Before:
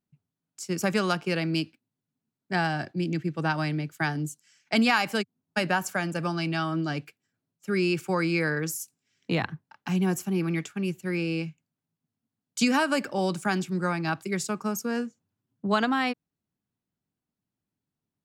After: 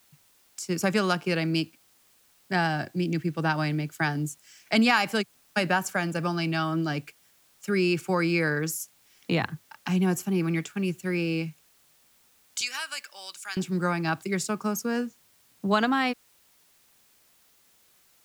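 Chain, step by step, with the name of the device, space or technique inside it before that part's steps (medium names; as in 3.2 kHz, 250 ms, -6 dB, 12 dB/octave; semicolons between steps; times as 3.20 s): noise-reduction cassette on a plain deck (tape noise reduction on one side only encoder only; wow and flutter 16 cents; white noise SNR 34 dB); 12.61–13.57 s: Bessel high-pass 2.7 kHz, order 2; trim +1 dB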